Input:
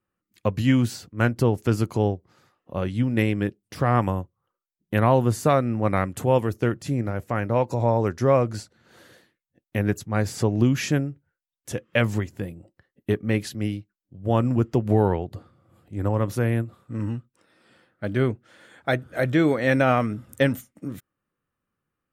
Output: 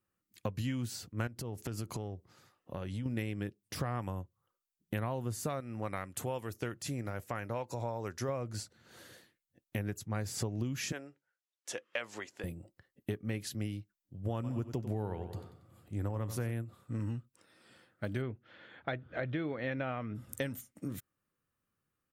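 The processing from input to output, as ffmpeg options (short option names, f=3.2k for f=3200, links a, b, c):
-filter_complex "[0:a]asettb=1/sr,asplit=3[a][b][c];[a]atrim=end=1.274[d];[b]atrim=start=1.27:end=3.06,asetpts=PTS-STARTPTS,afade=t=in:d=0.004:c=qsin,afade=t=out:st=1.786:d=0.004:c=qsin,acompressor=threshold=-30dB:ratio=8:attack=3.2:release=140:knee=1:detection=peak[e];[c]atrim=start=3.056[f];[d][e]acrossfade=d=0.004:c1=hsin:c2=qsin[g];[g][f]acrossfade=d=0.004:c1=qsin:c2=hsin,asettb=1/sr,asplit=3[h][i][j];[h]atrim=end=5.604[k];[i]atrim=start=5.6:end=8.29,asetpts=PTS-STARTPTS,afade=t=in:d=0.004:c=qsin,afade=t=out:st=2.686:d=0.004:c=qsin,lowshelf=f=450:g=-7.5[l];[j]atrim=start=8.286[m];[k][l]acrossfade=d=0.004:c1=hsin:c2=qsin[n];[n][m]acrossfade=d=0.004:c1=qsin:c2=hsin,asettb=1/sr,asplit=3[o][p][q];[o]atrim=end=10.924[r];[p]atrim=start=10.92:end=12.44,asetpts=PTS-STARTPTS,afade=t=in:d=0.004:c=qsin,afade=t=out:st=1.516:d=0.004:c=qsin,highpass=550,lowpass=6.6k[s];[q]atrim=start=12.436[t];[r][s]acrossfade=d=0.004:c1=hsin:c2=qsin[u];[u][t]acrossfade=d=0.004:c1=qsin:c2=hsin,asplit=3[v][w][x];[v]afade=t=out:st=14.43:d=0.02[y];[w]aecho=1:1:93|186|279|372:0.224|0.094|0.0395|0.0166,afade=t=in:st=14.43:d=0.02,afade=t=out:st=16.5:d=0.02[z];[x]afade=t=in:st=16.5:d=0.02[aa];[y][z][aa]amix=inputs=3:normalize=0,asplit=3[ab][ac][ad];[ab]afade=t=out:st=18.21:d=0.02[ae];[ac]lowpass=f=3.6k:w=0.5412,lowpass=f=3.6k:w=1.3066,afade=t=in:st=18.21:d=0.02,afade=t=out:st=20.14:d=0.02[af];[ad]afade=t=in:st=20.14:d=0.02[ag];[ae][af][ag]amix=inputs=3:normalize=0,highshelf=f=3.7k:g=7.5,acompressor=threshold=-29dB:ratio=6,equalizer=f=100:t=o:w=0.93:g=3,volume=-5dB"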